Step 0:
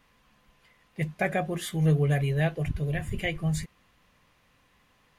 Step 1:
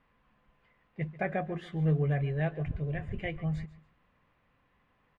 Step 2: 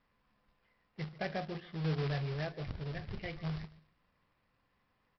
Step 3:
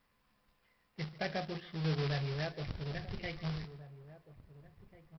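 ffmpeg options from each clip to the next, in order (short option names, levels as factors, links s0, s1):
-af "lowpass=2100,aecho=1:1:141|282:0.126|0.0315,volume=0.596"
-af "flanger=delay=9.5:depth=1.4:regen=-72:speed=0.41:shape=sinusoidal,aresample=11025,acrusher=bits=2:mode=log:mix=0:aa=0.000001,aresample=44100,volume=0.794"
-filter_complex "[0:a]highshelf=f=5100:g=11,asplit=2[s0][s1];[s1]adelay=1691,volume=0.158,highshelf=f=4000:g=-38[s2];[s0][s2]amix=inputs=2:normalize=0"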